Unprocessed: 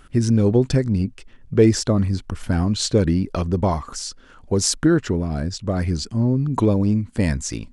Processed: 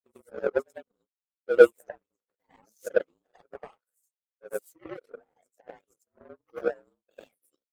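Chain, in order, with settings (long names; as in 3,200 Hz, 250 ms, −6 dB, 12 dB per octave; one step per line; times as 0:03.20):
partials spread apart or drawn together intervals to 115%
high-pass with resonance 500 Hz, resonance Q 5
on a send: backwards echo 97 ms −7 dB
on the sum: power curve on the samples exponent 2
reverb reduction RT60 1.5 s
level −5 dB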